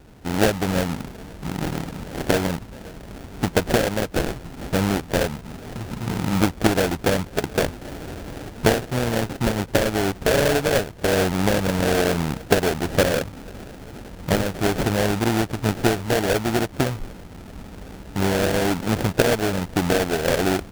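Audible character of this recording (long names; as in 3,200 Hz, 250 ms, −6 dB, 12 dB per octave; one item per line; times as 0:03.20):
aliases and images of a low sample rate 1,100 Hz, jitter 20%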